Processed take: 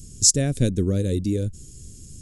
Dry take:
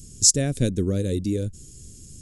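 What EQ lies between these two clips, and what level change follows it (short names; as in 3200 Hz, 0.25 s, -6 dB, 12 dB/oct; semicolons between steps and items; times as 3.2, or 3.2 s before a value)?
low shelf 160 Hz +3.5 dB; 0.0 dB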